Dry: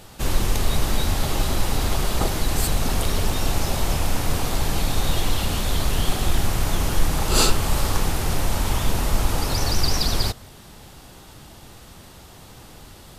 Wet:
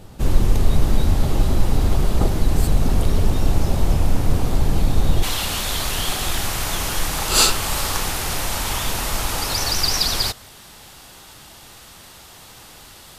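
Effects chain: tilt shelf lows +6 dB, about 650 Hz, from 5.22 s lows -5.5 dB

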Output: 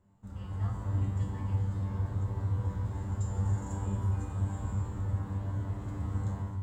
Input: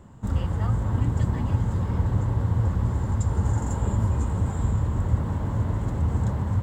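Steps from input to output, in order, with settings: level rider gain up to 11.5 dB; feedback comb 98 Hz, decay 0.63 s, harmonics all, mix 90%; trim -7.5 dB

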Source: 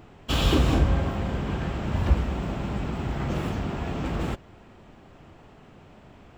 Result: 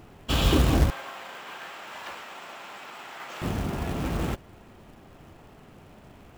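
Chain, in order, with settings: 0.90–3.42 s: high-pass 990 Hz 12 dB/octave; short-mantissa float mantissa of 2-bit

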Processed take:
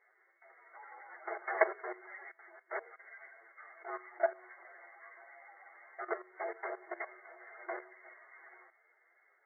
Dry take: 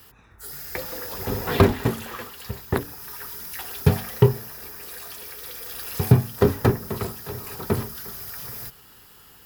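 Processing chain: frequency-domain pitch shifter +8.5 st; level held to a coarse grid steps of 16 dB; tilt shelf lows -8 dB; FFT band-pass 340–2200 Hz; trim -1.5 dB

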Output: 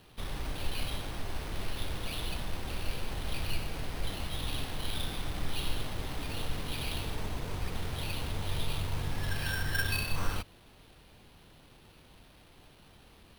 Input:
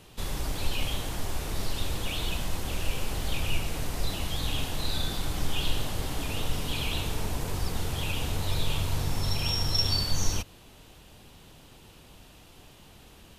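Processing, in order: sample-rate reducer 7.1 kHz, jitter 0%; trim -5 dB

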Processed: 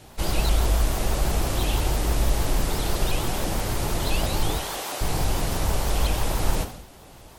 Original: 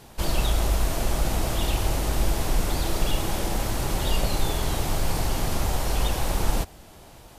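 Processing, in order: 4.58–5.01 s: high-pass 500 Hz 12 dB/octave; reverberation, pre-delay 3 ms, DRR 6.5 dB; vibrato with a chosen wave saw up 6.1 Hz, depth 250 cents

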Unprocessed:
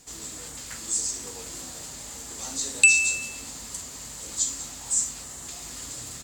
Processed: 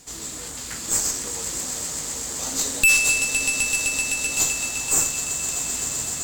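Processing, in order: echo with a slow build-up 128 ms, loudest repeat 5, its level -11.5 dB; valve stage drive 21 dB, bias 0.7; trim +8.5 dB

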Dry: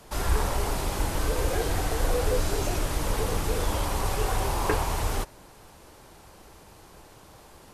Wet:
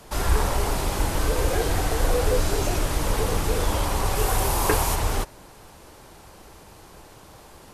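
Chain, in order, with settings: 4.15–4.94 s: treble shelf 11 kHz -> 5.7 kHz +10.5 dB; trim +3.5 dB

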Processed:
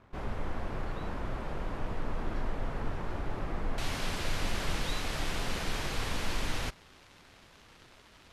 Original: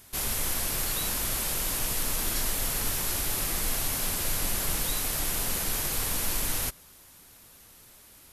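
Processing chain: crackle 390 per s -41 dBFS; low-pass 1.2 kHz 12 dB/octave, from 3.78 s 3.8 kHz

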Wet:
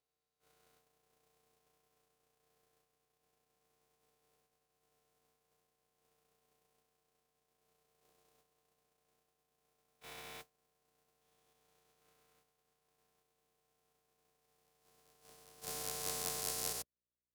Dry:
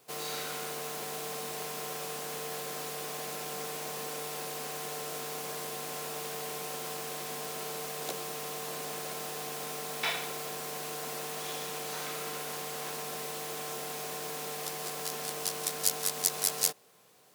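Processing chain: spectrogram pixelated in time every 400 ms; mains buzz 60 Hz, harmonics 10, -52 dBFS -3 dB/octave; gate -33 dBFS, range -55 dB; trim +4 dB

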